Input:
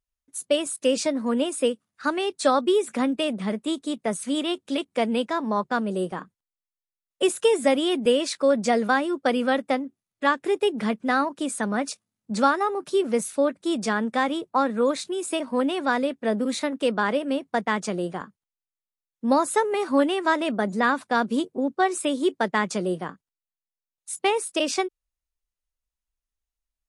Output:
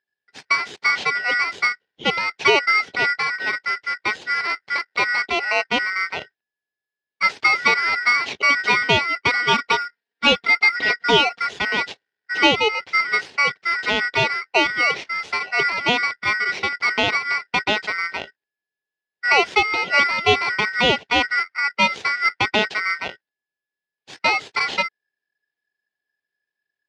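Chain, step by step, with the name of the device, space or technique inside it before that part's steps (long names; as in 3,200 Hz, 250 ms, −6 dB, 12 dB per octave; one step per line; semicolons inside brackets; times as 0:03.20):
ring modulator pedal into a guitar cabinet (ring modulator with a square carrier 1,700 Hz; loudspeaker in its box 98–4,200 Hz, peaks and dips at 410 Hz +8 dB, 790 Hz +3 dB, 1,200 Hz −8 dB)
0:09.48–0:11.47: comb filter 4.3 ms, depth 81%
level +5 dB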